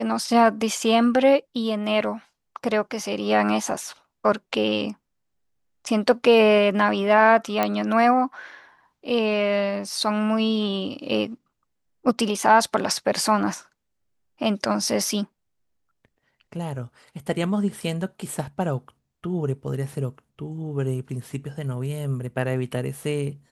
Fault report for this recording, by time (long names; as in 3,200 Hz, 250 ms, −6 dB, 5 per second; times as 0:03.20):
0:07.63: click −8 dBFS